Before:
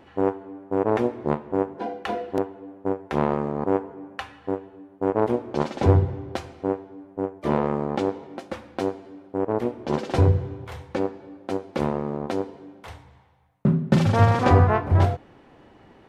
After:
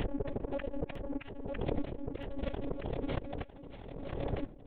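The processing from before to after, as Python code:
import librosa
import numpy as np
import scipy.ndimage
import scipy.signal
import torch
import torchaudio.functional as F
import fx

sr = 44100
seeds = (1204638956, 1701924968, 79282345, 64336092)

p1 = fx.tape_stop_end(x, sr, length_s=1.42)
p2 = scipy.signal.sosfilt(scipy.signal.butter(2, 210.0, 'highpass', fs=sr, output='sos'), p1)
p3 = fx.gate_flip(p2, sr, shuts_db=-18.0, range_db=-40)
p4 = fx.lpc_monotone(p3, sr, seeds[0], pitch_hz=280.0, order=10)
p5 = fx.peak_eq(p4, sr, hz=1200.0, db=-12.0, octaves=1.9)
p6 = fx.level_steps(p5, sr, step_db=20)
p7 = fx.stretch_grains(p6, sr, factor=0.5, grain_ms=89.0)
p8 = 10.0 ** (-33.5 / 20.0) * np.tanh(p7 / 10.0 ** (-33.5 / 20.0))
p9 = fx.stretch_vocoder(p8, sr, factor=0.58)
p10 = p9 + fx.echo_swing(p9, sr, ms=1272, ratio=3, feedback_pct=61, wet_db=-15.0, dry=0)
p11 = fx.pre_swell(p10, sr, db_per_s=31.0)
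y = F.gain(torch.from_numpy(p11), 13.5).numpy()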